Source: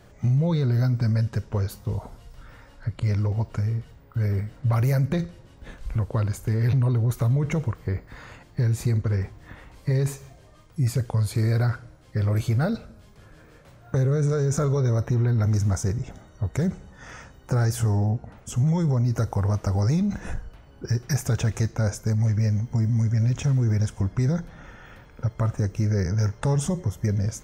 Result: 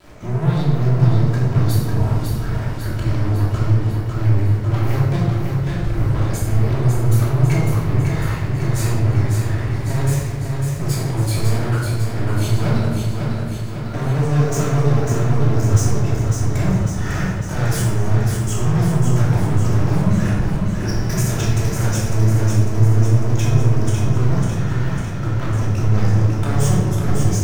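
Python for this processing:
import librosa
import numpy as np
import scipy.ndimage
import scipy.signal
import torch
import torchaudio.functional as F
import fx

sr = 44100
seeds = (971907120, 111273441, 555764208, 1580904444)

p1 = fx.vibrato(x, sr, rate_hz=0.62, depth_cents=6.1)
p2 = fx.rider(p1, sr, range_db=10, speed_s=2.0)
p3 = p1 + (p2 * 10.0 ** (-1.5 / 20.0))
p4 = fx.leveller(p3, sr, passes=5)
p5 = p4 + fx.echo_feedback(p4, sr, ms=550, feedback_pct=59, wet_db=-5, dry=0)
p6 = fx.room_shoebox(p5, sr, seeds[0], volume_m3=610.0, walls='mixed', distance_m=2.9)
y = p6 * 10.0 ** (-17.5 / 20.0)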